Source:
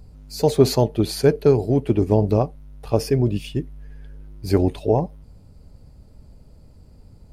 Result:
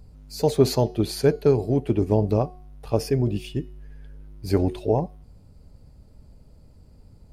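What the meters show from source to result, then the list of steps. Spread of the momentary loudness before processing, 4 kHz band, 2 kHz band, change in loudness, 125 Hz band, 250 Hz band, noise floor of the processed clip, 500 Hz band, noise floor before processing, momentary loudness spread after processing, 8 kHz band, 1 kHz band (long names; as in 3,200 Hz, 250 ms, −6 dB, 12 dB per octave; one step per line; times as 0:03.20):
12 LU, −3.0 dB, −3.0 dB, −3.0 dB, −3.0 dB, −3.0 dB, −51 dBFS, −3.0 dB, −48 dBFS, 12 LU, −3.0 dB, −3.0 dB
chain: hum removal 364.9 Hz, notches 19
level −3 dB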